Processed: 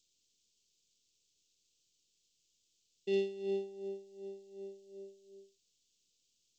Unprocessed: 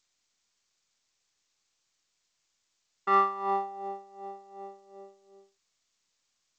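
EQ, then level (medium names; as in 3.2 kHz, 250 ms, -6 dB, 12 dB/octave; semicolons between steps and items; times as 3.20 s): Chebyshev band-stop 470–2900 Hz, order 3; +1.5 dB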